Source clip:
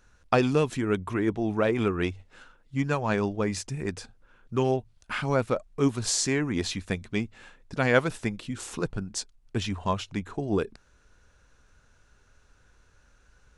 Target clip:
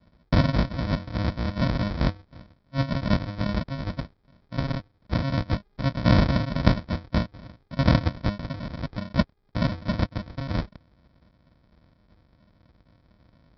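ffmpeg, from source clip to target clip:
-af "aexciter=amount=7.9:drive=2.8:freq=2.1k,aresample=11025,acrusher=samples=27:mix=1:aa=0.000001,aresample=44100,highpass=42,bandreject=f=2.8k:w=5.4"

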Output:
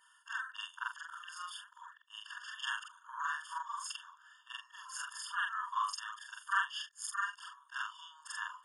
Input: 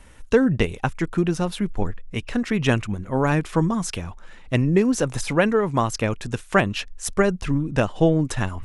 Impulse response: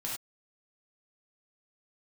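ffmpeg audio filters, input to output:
-af "afftfilt=real='re':imag='-im':win_size=4096:overlap=0.75,afftfilt=real='re*eq(mod(floor(b*sr/1024/910),2),1)':imag='im*eq(mod(floor(b*sr/1024/910),2),1)':win_size=1024:overlap=0.75,volume=-3.5dB"

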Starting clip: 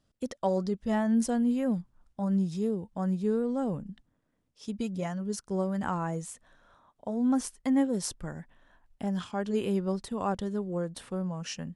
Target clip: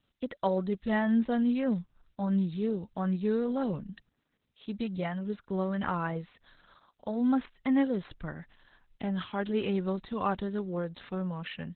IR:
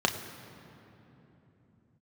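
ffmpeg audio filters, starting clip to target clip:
-filter_complex "[0:a]aemphasis=mode=production:type=cd,acrossover=split=2600[a][b];[b]acompressor=threshold=-52dB:ratio=4:attack=1:release=60[c];[a][c]amix=inputs=2:normalize=0,equalizer=f=8.1k:w=1.1:g=3.5,acrossover=split=720|1400[d][e][f];[f]acontrast=87[g];[d][e][g]amix=inputs=3:normalize=0" -ar 48000 -c:a libopus -b:a 8k

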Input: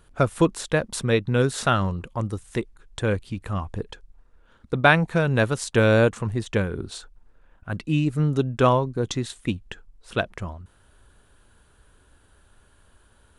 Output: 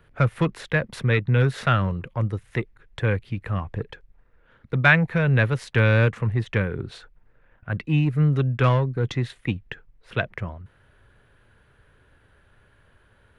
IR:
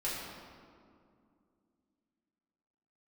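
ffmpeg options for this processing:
-filter_complex "[0:a]equalizer=f=125:t=o:w=1:g=10,equalizer=f=500:t=o:w=1:g=6,equalizer=f=2k:t=o:w=1:g=11,equalizer=f=8k:t=o:w=1:g=-12,acrossover=split=230|1000|1900[a][b][c][d];[b]asoftclip=type=tanh:threshold=-20dB[e];[a][e][c][d]amix=inputs=4:normalize=0,volume=-4.5dB"

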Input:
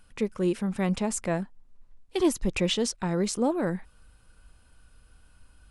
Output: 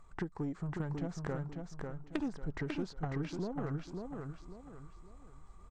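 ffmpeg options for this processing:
-filter_complex "[0:a]acrossover=split=7000[a][b];[b]acompressor=threshold=-50dB:ratio=4:attack=1:release=60[c];[a][c]amix=inputs=2:normalize=0,highshelf=f=2.3k:t=q:w=1.5:g=-8.5,acompressor=threshold=-35dB:ratio=8,asetrate=35002,aresample=44100,atempo=1.25992,aeval=exprs='0.075*(cos(1*acos(clip(val(0)/0.075,-1,1)))-cos(1*PI/2))+0.0168*(cos(3*acos(clip(val(0)/0.075,-1,1)))-cos(3*PI/2))+0.00335*(cos(5*acos(clip(val(0)/0.075,-1,1)))-cos(5*PI/2))+0.00266*(cos(6*acos(clip(val(0)/0.075,-1,1)))-cos(6*PI/2))':c=same,aecho=1:1:546|1092|1638|2184:0.596|0.203|0.0689|0.0234,volume=5.5dB"

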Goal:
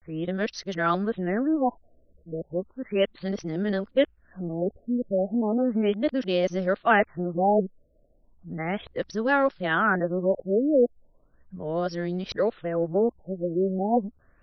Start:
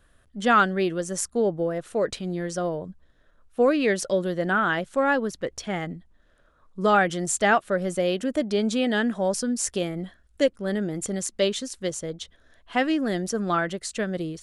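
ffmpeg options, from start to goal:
-af "areverse,afftfilt=real='re*lt(b*sr/1024,660*pow(6500/660,0.5+0.5*sin(2*PI*0.35*pts/sr)))':imag='im*lt(b*sr/1024,660*pow(6500/660,0.5+0.5*sin(2*PI*0.35*pts/sr)))':win_size=1024:overlap=0.75"

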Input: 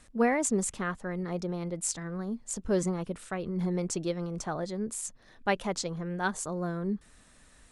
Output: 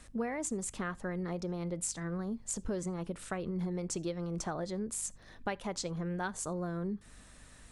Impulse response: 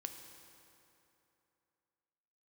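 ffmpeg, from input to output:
-filter_complex "[0:a]acompressor=threshold=-35dB:ratio=6,aeval=exprs='val(0)+0.000794*(sin(2*PI*50*n/s)+sin(2*PI*2*50*n/s)/2+sin(2*PI*3*50*n/s)/3+sin(2*PI*4*50*n/s)/4+sin(2*PI*5*50*n/s)/5)':c=same,asplit=2[a][b];[1:a]atrim=start_sample=2205,atrim=end_sample=3969[c];[b][c]afir=irnorm=-1:irlink=0,volume=-8dB[d];[a][d]amix=inputs=2:normalize=0"

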